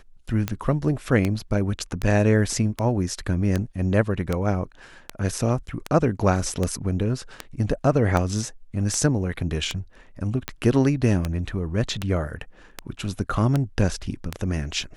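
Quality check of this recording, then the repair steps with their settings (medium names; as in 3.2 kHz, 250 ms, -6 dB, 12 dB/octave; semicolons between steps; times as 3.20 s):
tick 78 rpm -10 dBFS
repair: de-click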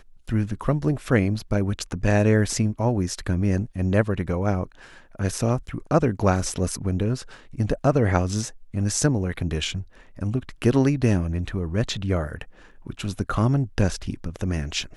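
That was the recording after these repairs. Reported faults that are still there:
nothing left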